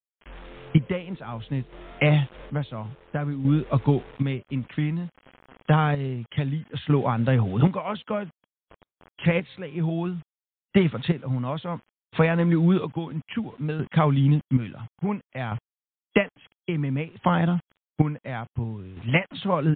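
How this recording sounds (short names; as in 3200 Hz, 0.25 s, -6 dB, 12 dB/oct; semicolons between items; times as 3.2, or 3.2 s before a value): a quantiser's noise floor 8-bit, dither none; chopped level 0.58 Hz, depth 60%, duty 45%; MP3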